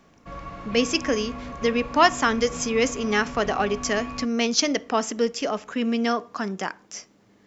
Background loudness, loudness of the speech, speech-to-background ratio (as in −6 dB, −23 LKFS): −36.5 LKFS, −24.0 LKFS, 12.5 dB